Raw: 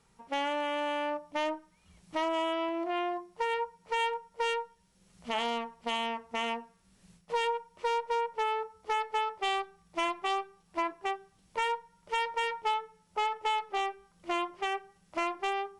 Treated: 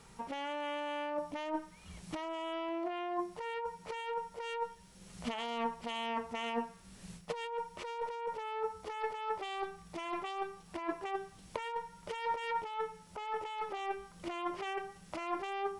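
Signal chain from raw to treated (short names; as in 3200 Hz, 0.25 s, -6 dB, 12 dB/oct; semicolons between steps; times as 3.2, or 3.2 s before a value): negative-ratio compressor -40 dBFS, ratio -1; gain +2 dB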